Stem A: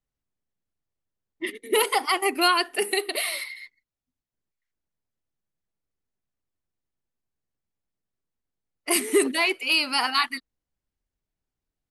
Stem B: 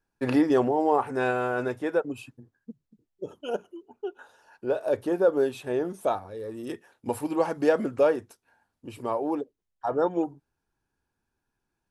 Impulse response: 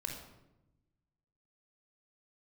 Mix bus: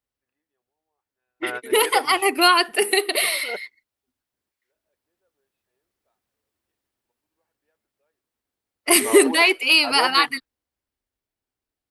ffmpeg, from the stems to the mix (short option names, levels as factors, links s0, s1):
-filter_complex "[0:a]highpass=f=120:p=1,equalizer=f=160:t=o:w=0.46:g=-11.5,volume=1.33,asplit=2[s0][s1];[1:a]equalizer=f=125:t=o:w=1:g=-11,equalizer=f=250:t=o:w=1:g=-12,equalizer=f=500:t=o:w=1:g=-4,equalizer=f=1000:t=o:w=1:g=-4,equalizer=f=2000:t=o:w=1:g=6,equalizer=f=4000:t=o:w=1:g=3,equalizer=f=8000:t=o:w=1:g=-12,volume=1[s2];[s1]apad=whole_len=525034[s3];[s2][s3]sidechaingate=range=0.002:threshold=0.0158:ratio=16:detection=peak[s4];[s0][s4]amix=inputs=2:normalize=0,equalizer=f=6600:t=o:w=0.38:g=-3.5,dynaudnorm=f=450:g=11:m=4.47"